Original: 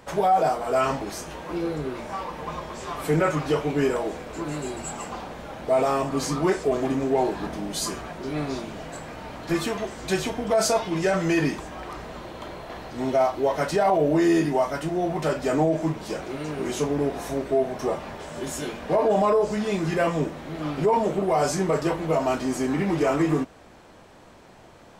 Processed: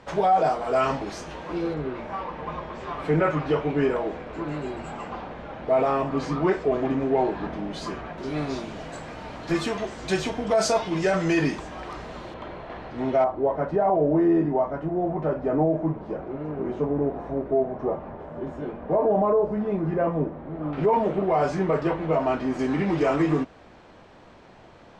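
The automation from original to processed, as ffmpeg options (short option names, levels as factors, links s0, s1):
-af "asetnsamples=n=441:p=0,asendcmd='1.74 lowpass f 2800;8.18 lowpass f 6700;12.34 lowpass f 2800;13.24 lowpass f 1000;20.73 lowpass f 2600;22.59 lowpass f 4600',lowpass=5100"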